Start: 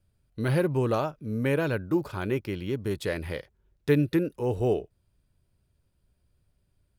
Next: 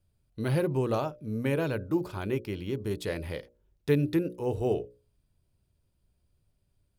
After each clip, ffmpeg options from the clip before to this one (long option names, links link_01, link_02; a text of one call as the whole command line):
ffmpeg -i in.wav -af "equalizer=frequency=1600:width=1.5:gain=-4,bandreject=frequency=60:width_type=h:width=6,bandreject=frequency=120:width_type=h:width=6,bandreject=frequency=180:width_type=h:width=6,bandreject=frequency=240:width_type=h:width=6,bandreject=frequency=300:width_type=h:width=6,bandreject=frequency=360:width_type=h:width=6,bandreject=frequency=420:width_type=h:width=6,bandreject=frequency=480:width_type=h:width=6,bandreject=frequency=540:width_type=h:width=6,bandreject=frequency=600:width_type=h:width=6,volume=-1.5dB" out.wav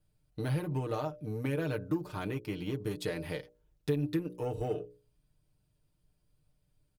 ffmpeg -i in.wav -af "acompressor=threshold=-32dB:ratio=5,aeval=exprs='0.0708*(cos(1*acos(clip(val(0)/0.0708,-1,1)))-cos(1*PI/2))+0.002*(cos(7*acos(clip(val(0)/0.0708,-1,1)))-cos(7*PI/2))':channel_layout=same,aecho=1:1:6.6:0.69" out.wav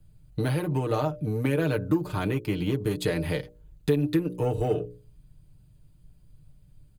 ffmpeg -i in.wav -filter_complex "[0:a]bass=frequency=250:gain=12,treble=frequency=4000:gain=1,bandreject=frequency=5500:width=6.6,acrossover=split=290|1400[link_01][link_02][link_03];[link_01]acompressor=threshold=-37dB:ratio=6[link_04];[link_04][link_02][link_03]amix=inputs=3:normalize=0,volume=7.5dB" out.wav